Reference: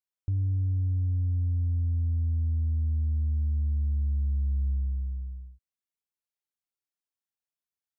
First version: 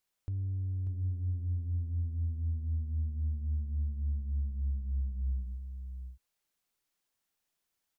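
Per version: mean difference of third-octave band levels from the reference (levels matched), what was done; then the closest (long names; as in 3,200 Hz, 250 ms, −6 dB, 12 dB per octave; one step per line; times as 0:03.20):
3.0 dB: stylus tracing distortion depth 0.16 ms
in parallel at +1 dB: compressor whose output falls as the input rises −32 dBFS, ratio −0.5
on the sum: brickwall limiter −29.5 dBFS, peak gain reduction 11 dB
single-tap delay 590 ms −7.5 dB
level −1.5 dB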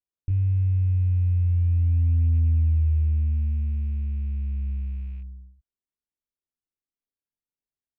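1.5 dB: loose part that buzzes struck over −30 dBFS, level −39 dBFS
spectral tilt −3 dB per octave
hollow resonant body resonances 270/390 Hz, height 7 dB
chorus effect 0.27 Hz, depth 2.3 ms
level −4 dB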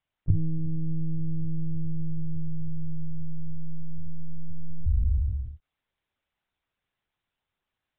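6.5 dB: dynamic equaliser 200 Hz, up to −7 dB, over −52 dBFS, Q 2
speech leveller 0.5 s
bad sample-rate conversion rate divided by 4×, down none, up hold
one-pitch LPC vocoder at 8 kHz 160 Hz
level +4.5 dB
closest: second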